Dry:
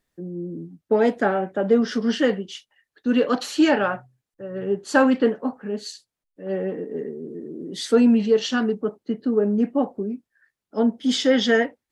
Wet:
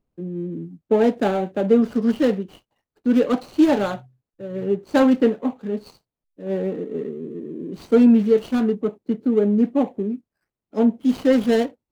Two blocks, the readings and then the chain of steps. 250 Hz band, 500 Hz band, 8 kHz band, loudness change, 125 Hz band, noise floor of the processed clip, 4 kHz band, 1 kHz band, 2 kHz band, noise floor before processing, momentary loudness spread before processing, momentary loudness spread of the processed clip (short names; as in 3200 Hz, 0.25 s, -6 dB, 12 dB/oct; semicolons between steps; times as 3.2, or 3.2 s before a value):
+3.0 dB, +1.0 dB, n/a, +1.5 dB, +3.5 dB, under -85 dBFS, -8.5 dB, -1.5 dB, -7.0 dB, under -85 dBFS, 16 LU, 15 LU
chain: median filter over 25 samples; low shelf 350 Hz +4.5 dB